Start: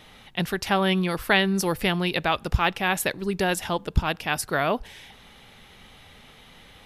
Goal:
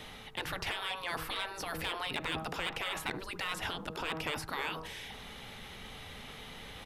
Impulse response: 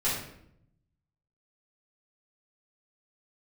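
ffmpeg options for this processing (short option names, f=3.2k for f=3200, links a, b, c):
-filter_complex "[0:a]acrossover=split=3500[a][b];[b]acompressor=threshold=-44dB:ratio=4:attack=1:release=60[c];[a][c]amix=inputs=2:normalize=0,bandreject=f=159.5:t=h:w=4,bandreject=f=319:t=h:w=4,bandreject=f=478.5:t=h:w=4,bandreject=f=638:t=h:w=4,bandreject=f=797.5:t=h:w=4,bandreject=f=957:t=h:w=4,bandreject=f=1.1165k:t=h:w=4,bandreject=f=1.276k:t=h:w=4,afftfilt=real='re*lt(hypot(re,im),0.112)':imag='im*lt(hypot(re,im),0.112)':win_size=1024:overlap=0.75,areverse,acompressor=mode=upward:threshold=-41dB:ratio=2.5,areverse,aeval=exprs='val(0)+0.000891*sin(2*PI*440*n/s)':c=same,acrossover=split=830|1300[d][e][f];[e]aecho=1:1:73:0.596[g];[f]asoftclip=type=tanh:threshold=-29dB[h];[d][g][h]amix=inputs=3:normalize=0"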